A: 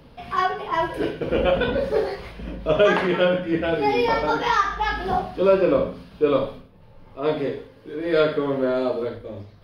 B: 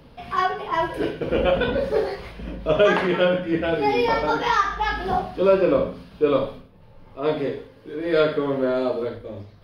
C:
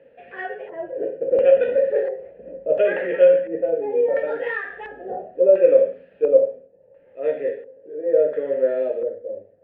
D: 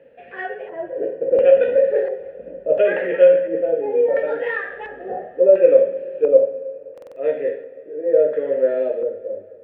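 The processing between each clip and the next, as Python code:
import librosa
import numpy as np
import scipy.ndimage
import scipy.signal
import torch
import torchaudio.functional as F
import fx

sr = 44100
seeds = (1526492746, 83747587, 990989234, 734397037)

y1 = x
y2 = fx.vowel_filter(y1, sr, vowel='e')
y2 = fx.filter_lfo_lowpass(y2, sr, shape='square', hz=0.72, low_hz=740.0, high_hz=1800.0, q=1.0)
y2 = F.gain(torch.from_numpy(y2), 8.0).numpy()
y3 = fx.rev_plate(y2, sr, seeds[0], rt60_s=3.2, hf_ratio=0.9, predelay_ms=75, drr_db=17.5)
y3 = fx.buffer_glitch(y3, sr, at_s=(6.93,), block=2048, repeats=4)
y3 = F.gain(torch.from_numpy(y3), 2.0).numpy()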